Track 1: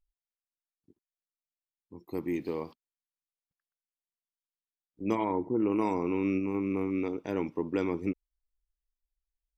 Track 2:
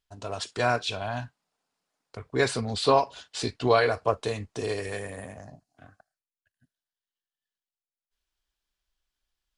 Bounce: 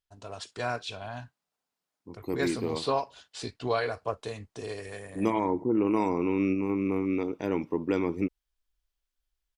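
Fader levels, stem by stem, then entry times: +2.5, −7.0 decibels; 0.15, 0.00 seconds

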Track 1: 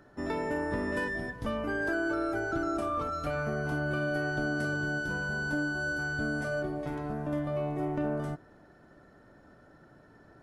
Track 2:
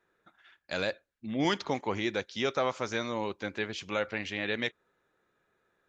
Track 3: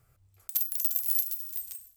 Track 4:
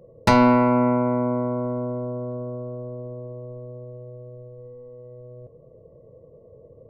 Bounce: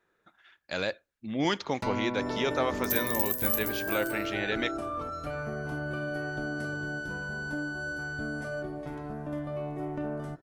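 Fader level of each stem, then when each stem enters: −3.0, +0.5, −2.0, −17.5 decibels; 2.00, 0.00, 2.35, 1.55 seconds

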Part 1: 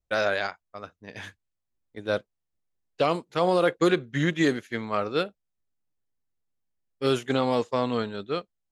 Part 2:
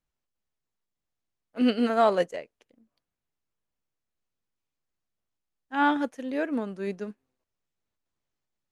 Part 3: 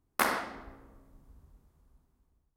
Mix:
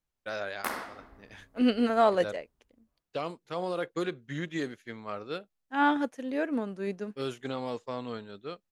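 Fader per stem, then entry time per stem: −10.5, −1.5, −6.0 decibels; 0.15, 0.00, 0.45 seconds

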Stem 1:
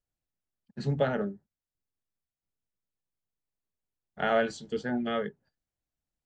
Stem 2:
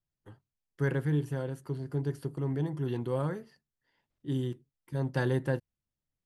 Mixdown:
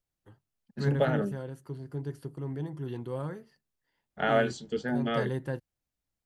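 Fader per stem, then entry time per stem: +0.5, −4.0 decibels; 0.00, 0.00 seconds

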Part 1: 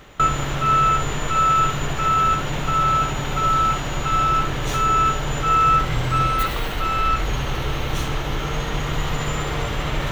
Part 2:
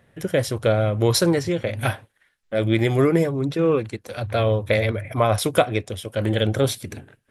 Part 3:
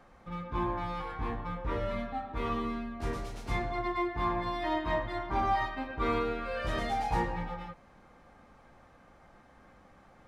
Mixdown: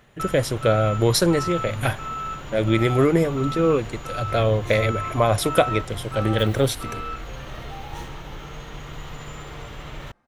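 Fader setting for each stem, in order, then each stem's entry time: −12.5, 0.0, −9.0 decibels; 0.00, 0.00, 0.80 seconds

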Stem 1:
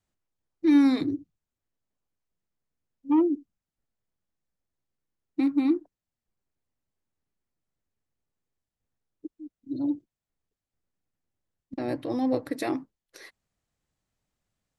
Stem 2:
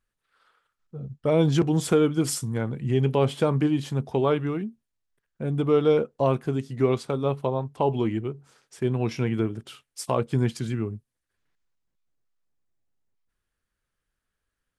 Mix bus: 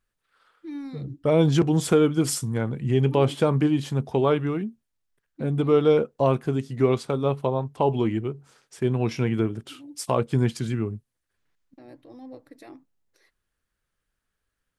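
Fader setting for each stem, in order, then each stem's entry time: −16.5, +1.5 decibels; 0.00, 0.00 seconds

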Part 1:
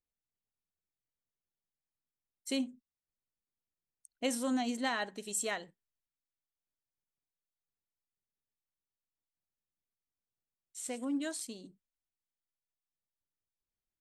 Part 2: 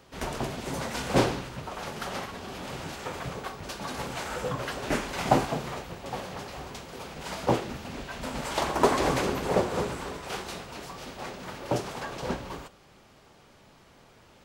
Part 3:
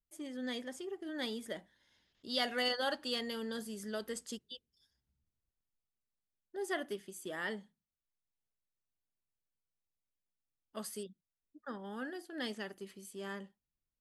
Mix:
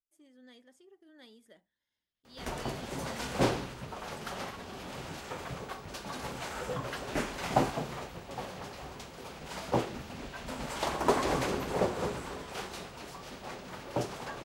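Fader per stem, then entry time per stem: muted, −4.5 dB, −16.5 dB; muted, 2.25 s, 0.00 s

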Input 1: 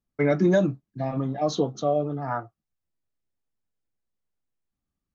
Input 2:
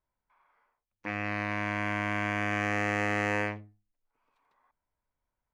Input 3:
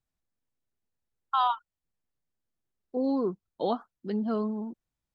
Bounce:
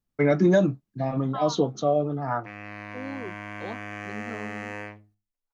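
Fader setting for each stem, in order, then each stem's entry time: +1.0, −7.0, −9.5 decibels; 0.00, 1.40, 0.00 seconds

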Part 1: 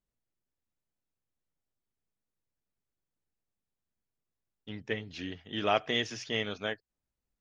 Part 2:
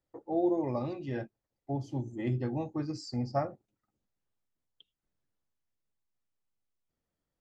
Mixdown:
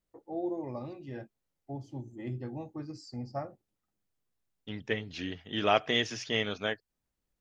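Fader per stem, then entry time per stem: +2.0, −6.0 decibels; 0.00, 0.00 seconds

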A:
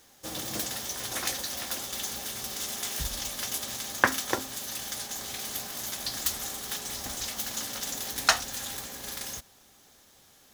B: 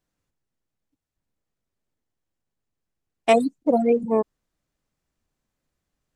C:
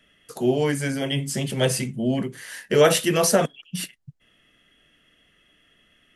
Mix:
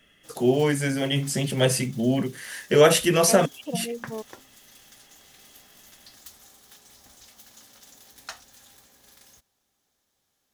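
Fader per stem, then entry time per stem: −17.0, −14.0, +0.5 decibels; 0.00, 0.00, 0.00 seconds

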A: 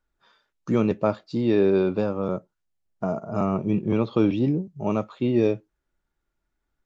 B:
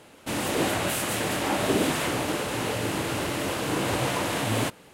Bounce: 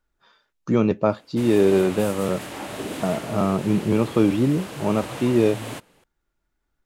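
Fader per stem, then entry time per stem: +2.5, −7.5 decibels; 0.00, 1.10 seconds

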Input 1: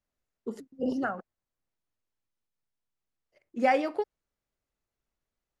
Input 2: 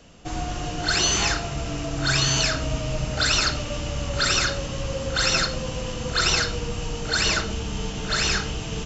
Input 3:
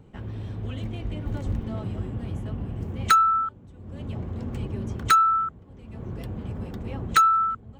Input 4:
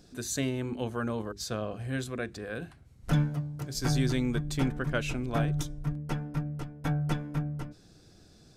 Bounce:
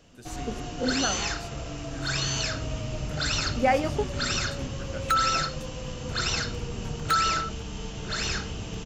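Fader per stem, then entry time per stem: +1.5, −7.0, −6.5, −11.5 decibels; 0.00, 0.00, 2.00, 0.00 seconds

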